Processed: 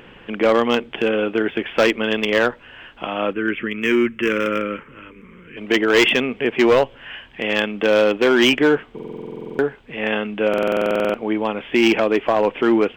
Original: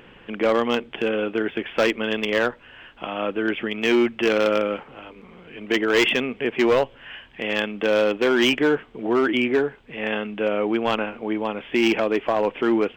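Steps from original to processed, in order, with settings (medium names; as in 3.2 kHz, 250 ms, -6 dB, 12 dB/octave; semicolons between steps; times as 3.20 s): 3.33–5.57 s: static phaser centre 1.8 kHz, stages 4; buffer glitch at 8.94/10.49 s, samples 2048, times 13; trim +4 dB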